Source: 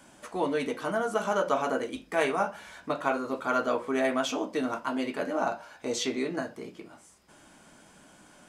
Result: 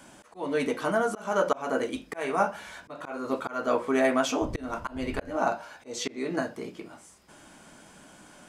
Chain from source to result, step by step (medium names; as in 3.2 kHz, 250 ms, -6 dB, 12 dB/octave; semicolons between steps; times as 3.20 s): 4.41–5.35 s: wind noise 110 Hz -34 dBFS; dynamic bell 3.4 kHz, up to -4 dB, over -46 dBFS, Q 2.4; slow attack 266 ms; trim +3.5 dB